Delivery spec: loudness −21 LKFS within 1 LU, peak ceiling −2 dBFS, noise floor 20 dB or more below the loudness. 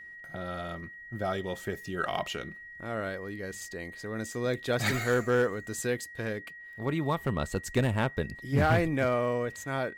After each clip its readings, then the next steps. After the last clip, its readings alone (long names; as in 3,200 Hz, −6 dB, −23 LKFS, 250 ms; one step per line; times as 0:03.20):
share of clipped samples 0.3%; peaks flattened at −18.0 dBFS; interfering tone 1,900 Hz; level of the tone −44 dBFS; integrated loudness −31.0 LKFS; sample peak −18.0 dBFS; target loudness −21.0 LKFS
→ clipped peaks rebuilt −18 dBFS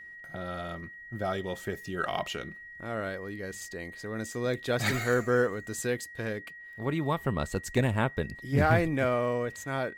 share of clipped samples 0.0%; interfering tone 1,900 Hz; level of the tone −44 dBFS
→ notch filter 1,900 Hz, Q 30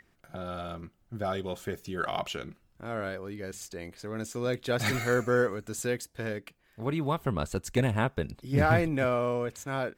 interfering tone none found; integrated loudness −31.0 LKFS; sample peak −10.5 dBFS; target loudness −21.0 LKFS
→ level +10 dB
brickwall limiter −2 dBFS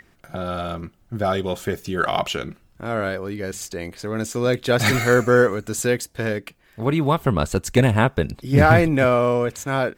integrated loudness −21.0 LKFS; sample peak −2.0 dBFS; background noise floor −57 dBFS